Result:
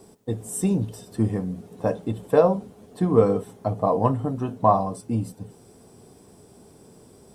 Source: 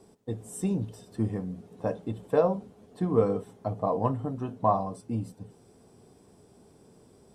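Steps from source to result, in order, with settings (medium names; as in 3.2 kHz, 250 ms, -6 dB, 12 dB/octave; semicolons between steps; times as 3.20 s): treble shelf 9.5 kHz +9 dB; trim +6 dB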